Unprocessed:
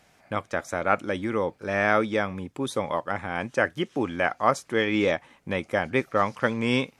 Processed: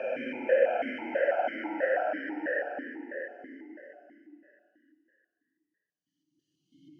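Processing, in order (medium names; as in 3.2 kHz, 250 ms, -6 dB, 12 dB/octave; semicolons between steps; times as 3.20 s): spectral noise reduction 29 dB; Paulstretch 38×, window 0.05 s, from 3.58 s; stepped vowel filter 6.1 Hz; trim +1.5 dB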